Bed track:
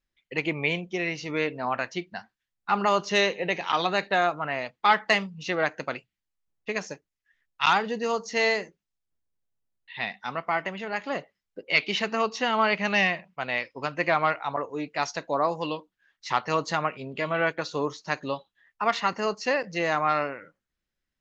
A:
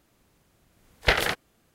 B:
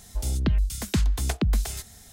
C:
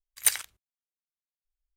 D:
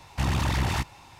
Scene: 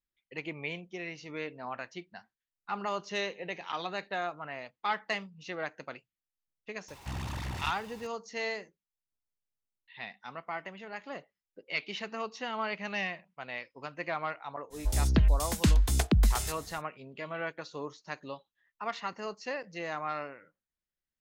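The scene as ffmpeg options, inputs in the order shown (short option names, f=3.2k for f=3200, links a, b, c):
-filter_complex "[0:a]volume=-11dB[a];[4:a]aeval=exprs='val(0)+0.5*0.0133*sgn(val(0))':c=same,atrim=end=1.19,asetpts=PTS-STARTPTS,volume=-12.5dB,afade=t=in:d=0.004:c=hsin,afade=t=out:st=1.186:d=0.004:c=hsin,adelay=6880[b];[2:a]atrim=end=2.12,asetpts=PTS-STARTPTS,volume=-0.5dB,afade=t=in:d=0.05,afade=t=out:st=2.07:d=0.05,adelay=14700[c];[a][b][c]amix=inputs=3:normalize=0"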